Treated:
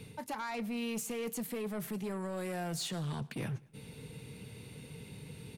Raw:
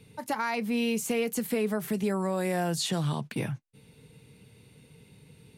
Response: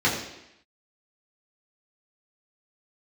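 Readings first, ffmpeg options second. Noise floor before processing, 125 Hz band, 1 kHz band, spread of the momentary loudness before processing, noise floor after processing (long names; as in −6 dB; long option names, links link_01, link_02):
−58 dBFS, −6.5 dB, −8.5 dB, 6 LU, −54 dBFS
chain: -af "areverse,acompressor=threshold=-38dB:ratio=10,areverse,asoftclip=type=tanh:threshold=-38.5dB,aecho=1:1:106|212|318:0.075|0.0322|0.0139,volume=6.5dB"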